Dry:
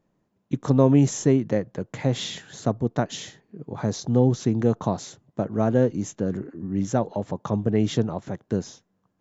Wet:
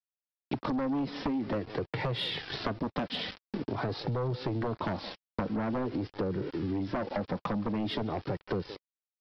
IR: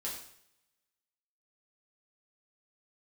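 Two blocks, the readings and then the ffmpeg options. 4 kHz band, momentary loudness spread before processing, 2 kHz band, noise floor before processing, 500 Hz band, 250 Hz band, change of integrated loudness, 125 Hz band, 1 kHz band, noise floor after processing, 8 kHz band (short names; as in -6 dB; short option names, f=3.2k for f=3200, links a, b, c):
-0.5 dB, 13 LU, 0.0 dB, -73 dBFS, -9.5 dB, -9.0 dB, -9.0 dB, -11.5 dB, -3.5 dB, under -85 dBFS, n/a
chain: -filter_complex "[0:a]agate=range=-33dB:threshold=-46dB:ratio=3:detection=peak,highpass=66,asplit=2[a][b];[b]alimiter=limit=-14dB:level=0:latency=1:release=137,volume=-1.5dB[c];[a][c]amix=inputs=2:normalize=0,acrossover=split=130|4200[d][e][f];[d]acompressor=threshold=-31dB:ratio=4[g];[e]acompressor=threshold=-17dB:ratio=4[h];[f]acompressor=threshold=-41dB:ratio=4[i];[g][h][i]amix=inputs=3:normalize=0,asplit=2[j][k];[k]adelay=170,highpass=300,lowpass=3.4k,asoftclip=type=hard:threshold=-17dB,volume=-18dB[l];[j][l]amix=inputs=2:normalize=0,aresample=11025,aeval=exprs='val(0)*gte(abs(val(0)),0.0112)':c=same,aresample=44100,flanger=delay=2.1:depth=1.9:regen=-28:speed=0.47:shape=sinusoidal,aeval=exprs='0.282*sin(PI/2*2.82*val(0)/0.282)':c=same,acompressor=threshold=-27dB:ratio=6,volume=-3.5dB" -ar 48000 -c:a libvorbis -b:a 128k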